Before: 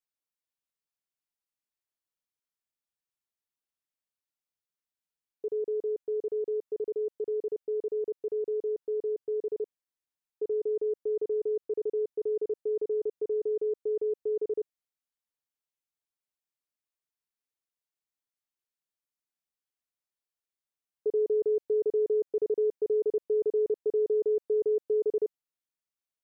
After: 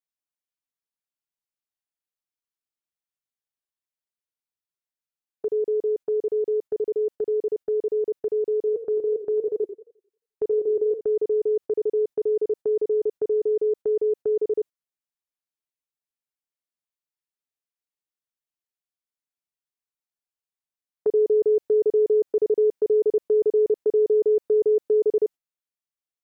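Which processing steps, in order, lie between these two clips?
noise gate −40 dBFS, range −11 dB
0:08.58–0:11.01: feedback echo with a swinging delay time 88 ms, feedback 36%, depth 164 cents, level −12 dB
level +7 dB

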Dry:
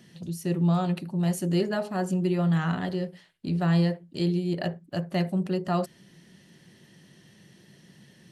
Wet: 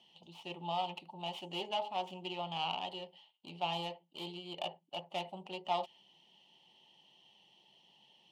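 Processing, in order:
stylus tracing distortion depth 0.48 ms
dynamic equaliser 1,900 Hz, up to +4 dB, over −48 dBFS, Q 1.1
pair of resonant band-passes 1,600 Hz, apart 1.8 octaves
level +4 dB

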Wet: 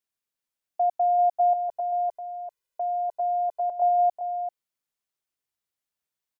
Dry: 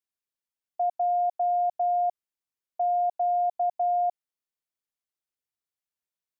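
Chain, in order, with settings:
0:01.53–0:03.82: comb filter 2 ms, depth 83%
single-tap delay 391 ms −8 dB
level +3 dB

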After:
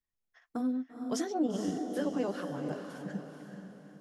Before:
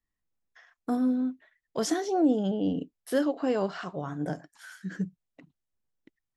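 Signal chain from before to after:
time stretch by overlap-add 0.63×, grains 94 ms
feedback delay with all-pass diffusion 463 ms, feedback 43%, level −6 dB
level −5 dB

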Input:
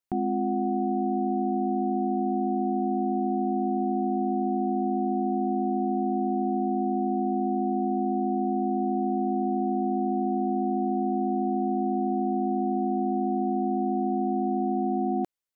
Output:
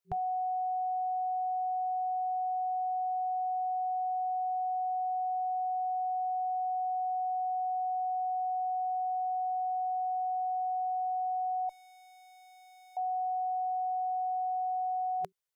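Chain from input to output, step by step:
brick-wall band-stop 180–380 Hz
0:11.69–0:12.97: tube saturation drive 56 dB, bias 0.65

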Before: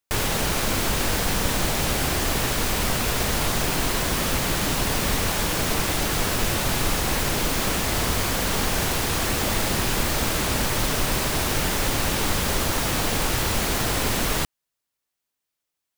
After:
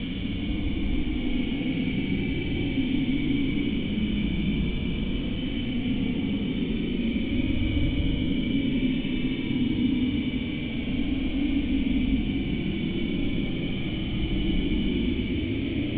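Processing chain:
extreme stretch with random phases 36×, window 0.05 s, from 0:01.24
formant resonators in series i
level +8.5 dB

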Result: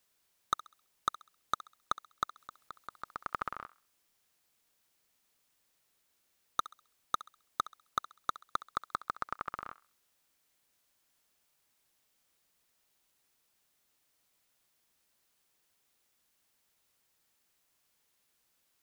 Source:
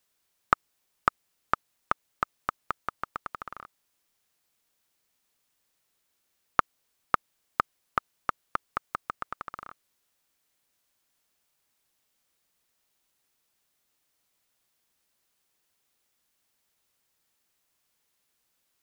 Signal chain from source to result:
hard clipping −19 dBFS, distortion −4 dB
0:02.37–0:03.50: compressor whose output falls as the input rises −37 dBFS, ratio −0.5
feedback echo with a high-pass in the loop 66 ms, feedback 36%, high-pass 810 Hz, level −15.5 dB

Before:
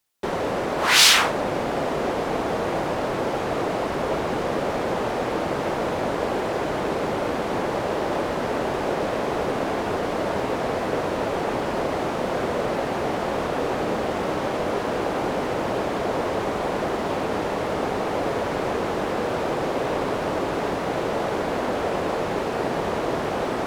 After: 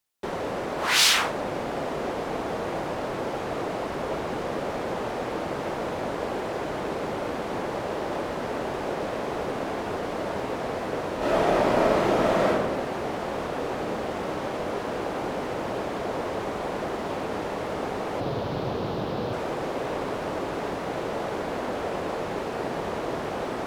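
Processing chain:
0:11.18–0:12.48: thrown reverb, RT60 1.2 s, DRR −7.5 dB
0:18.20–0:19.33: graphic EQ with 10 bands 125 Hz +11 dB, 2,000 Hz −6 dB, 4,000 Hz +7 dB, 8,000 Hz −10 dB
level −5 dB

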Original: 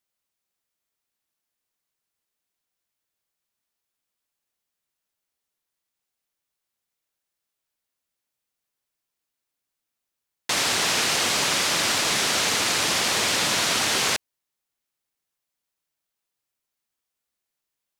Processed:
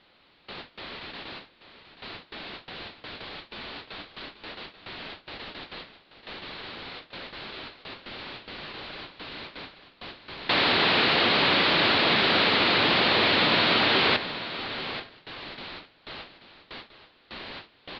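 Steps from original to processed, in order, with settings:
converter with a step at zero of −26.5 dBFS
Butterworth low-pass 4,400 Hz 72 dB per octave
hum removal 67.04 Hz, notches 31
noise gate with hold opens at −30 dBFS
parametric band 310 Hz +4.5 dB 1.7 octaves
on a send: single-tap delay 834 ms −12.5 dB

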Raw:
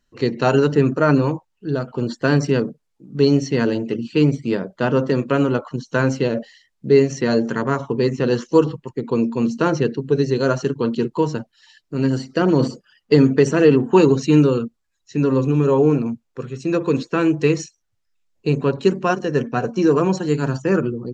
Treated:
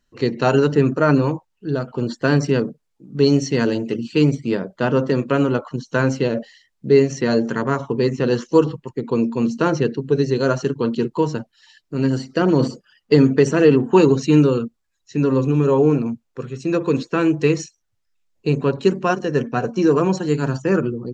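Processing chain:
0:03.25–0:04.35: high-shelf EQ 6,500 Hz +9 dB

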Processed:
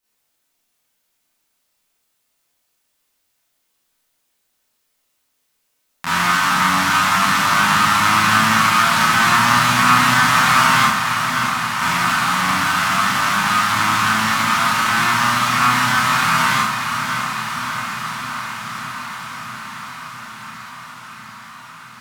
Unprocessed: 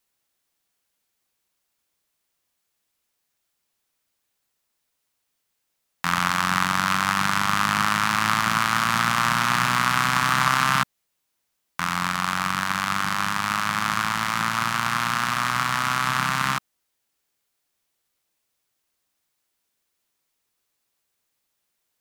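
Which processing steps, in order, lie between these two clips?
on a send: feedback delay with all-pass diffusion 644 ms, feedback 76%, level −8 dB
on the sum: four-comb reverb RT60 0.53 s, combs from 25 ms, DRR −9.5 dB
level −3.5 dB

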